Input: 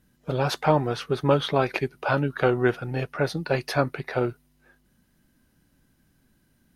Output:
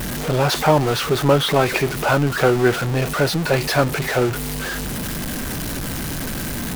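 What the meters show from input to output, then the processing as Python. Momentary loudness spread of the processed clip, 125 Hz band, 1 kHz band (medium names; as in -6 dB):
9 LU, +7.5 dB, +6.5 dB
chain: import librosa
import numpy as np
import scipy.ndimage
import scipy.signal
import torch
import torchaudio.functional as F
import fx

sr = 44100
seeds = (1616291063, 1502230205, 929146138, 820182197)

y = x + 0.5 * 10.0 ** (-23.5 / 20.0) * np.sign(x)
y = y * librosa.db_to_amplitude(3.5)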